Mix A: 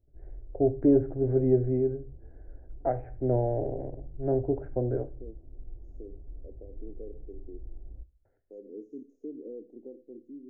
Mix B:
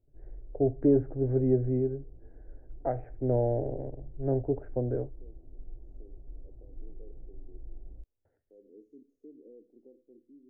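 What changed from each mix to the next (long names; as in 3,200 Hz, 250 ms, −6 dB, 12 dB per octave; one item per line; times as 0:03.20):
first voice: send off
second voice −11.0 dB
background: add parametric band 69 Hz −12 dB 0.53 octaves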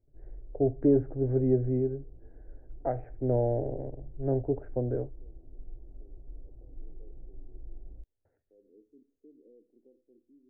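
second voice −5.5 dB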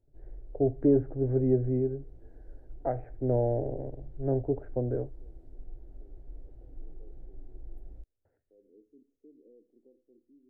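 background: remove Gaussian smoothing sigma 9 samples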